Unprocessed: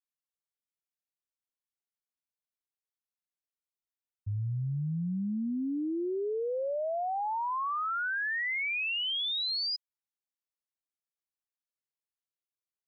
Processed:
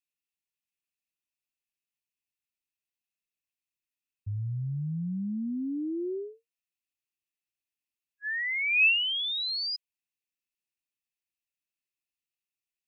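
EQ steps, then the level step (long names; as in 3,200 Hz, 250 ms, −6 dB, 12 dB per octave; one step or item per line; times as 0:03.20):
linear-phase brick-wall band-stop 410–1,700 Hz
parametric band 2,600 Hz +12.5 dB 0.22 octaves
0.0 dB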